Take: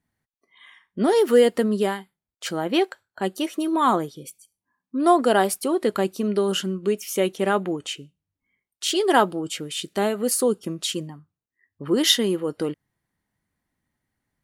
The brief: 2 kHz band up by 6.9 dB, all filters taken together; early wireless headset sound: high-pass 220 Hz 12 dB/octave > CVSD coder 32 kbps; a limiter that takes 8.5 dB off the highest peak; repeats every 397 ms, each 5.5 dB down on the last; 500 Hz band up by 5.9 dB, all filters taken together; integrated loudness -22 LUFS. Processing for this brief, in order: peaking EQ 500 Hz +7 dB; peaking EQ 2 kHz +8.5 dB; peak limiter -8 dBFS; high-pass 220 Hz 12 dB/octave; feedback delay 397 ms, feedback 53%, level -5.5 dB; CVSD coder 32 kbps; trim -1 dB

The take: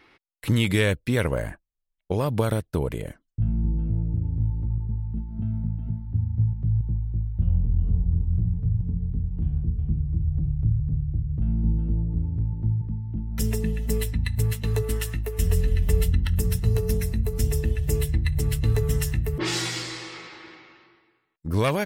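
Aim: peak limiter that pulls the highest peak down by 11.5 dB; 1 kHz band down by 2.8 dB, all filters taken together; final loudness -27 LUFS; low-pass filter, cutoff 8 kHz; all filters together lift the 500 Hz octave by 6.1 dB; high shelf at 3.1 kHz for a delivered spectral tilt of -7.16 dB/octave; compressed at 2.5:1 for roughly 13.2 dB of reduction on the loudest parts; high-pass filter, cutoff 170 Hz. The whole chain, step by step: high-pass 170 Hz; low-pass 8 kHz; peaking EQ 500 Hz +8.5 dB; peaking EQ 1 kHz -5.5 dB; treble shelf 3.1 kHz -8 dB; compression 2.5:1, threshold -36 dBFS; trim +12 dB; peak limiter -17 dBFS

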